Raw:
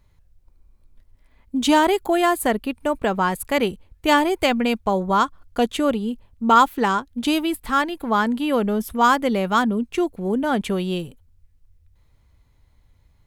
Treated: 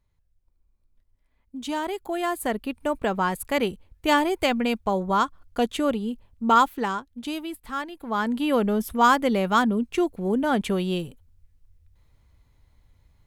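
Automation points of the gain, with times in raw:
1.71 s -13 dB
2.77 s -3.5 dB
6.56 s -3.5 dB
7.22 s -10.5 dB
7.96 s -10.5 dB
8.41 s -1.5 dB

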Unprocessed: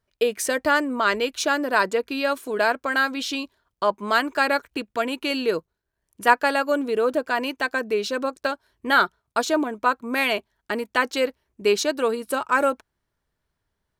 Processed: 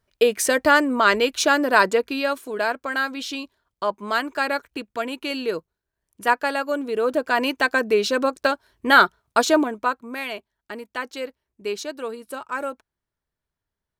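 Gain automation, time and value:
1.9 s +4 dB
2.5 s -2.5 dB
6.85 s -2.5 dB
7.47 s +4.5 dB
9.54 s +4.5 dB
10.2 s -8 dB

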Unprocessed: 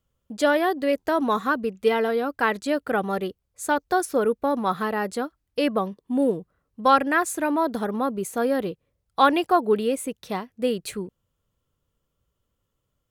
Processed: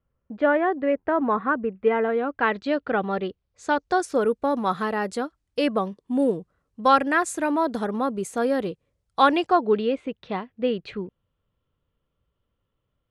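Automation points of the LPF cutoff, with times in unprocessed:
LPF 24 dB/oct
1.97 s 2200 Hz
2.66 s 4200 Hz
3.29 s 4200 Hz
4.2 s 9700 Hz
9.21 s 9700 Hz
10.01 s 3600 Hz

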